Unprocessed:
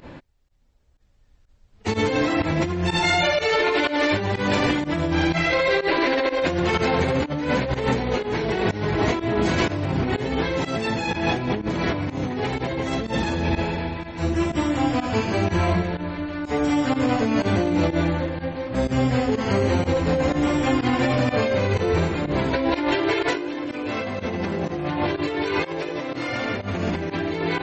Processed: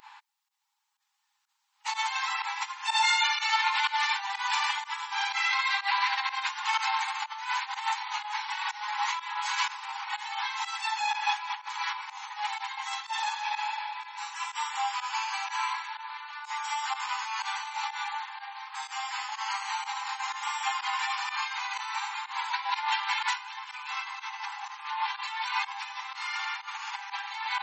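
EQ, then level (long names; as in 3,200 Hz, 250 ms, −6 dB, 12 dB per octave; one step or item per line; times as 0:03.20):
linear-phase brick-wall high-pass 790 Hz
parametric band 1,600 Hz −8.5 dB 1.5 octaves
parametric band 4,900 Hz −4.5 dB 2.3 octaves
+5.0 dB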